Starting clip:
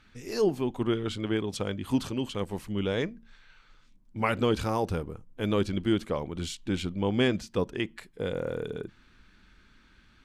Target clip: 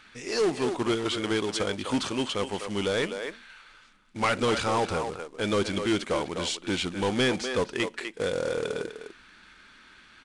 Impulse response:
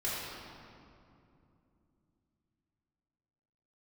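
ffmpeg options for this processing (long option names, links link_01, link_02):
-filter_complex "[0:a]asplit=2[link_01][link_02];[link_02]adelay=250,highpass=300,lowpass=3400,asoftclip=type=hard:threshold=-21.5dB,volume=-9dB[link_03];[link_01][link_03]amix=inputs=2:normalize=0,asplit=2[link_04][link_05];[link_05]highpass=frequency=720:poles=1,volume=19dB,asoftclip=type=tanh:threshold=-12.5dB[link_06];[link_04][link_06]amix=inputs=2:normalize=0,lowpass=frequency=6600:poles=1,volume=-6dB,acrusher=bits=3:mode=log:mix=0:aa=0.000001,aresample=22050,aresample=44100,volume=-3.5dB"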